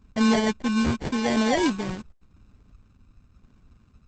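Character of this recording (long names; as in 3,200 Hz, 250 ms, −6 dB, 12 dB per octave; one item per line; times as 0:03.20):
phaser sweep stages 2, 0.87 Hz, lowest notch 620–1,500 Hz
aliases and images of a low sample rate 1,300 Hz, jitter 0%
Opus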